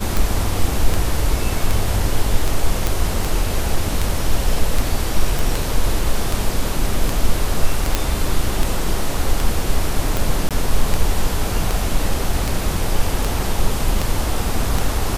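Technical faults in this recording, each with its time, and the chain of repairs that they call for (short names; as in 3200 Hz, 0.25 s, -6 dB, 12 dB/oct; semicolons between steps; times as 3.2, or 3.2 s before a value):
tick 78 rpm
2.87 pop
5.39 pop
7.95 pop -1 dBFS
10.49–10.51 gap 17 ms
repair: de-click; interpolate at 10.49, 17 ms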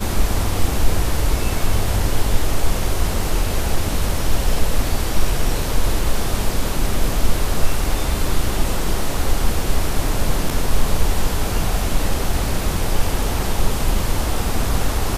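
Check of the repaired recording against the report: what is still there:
none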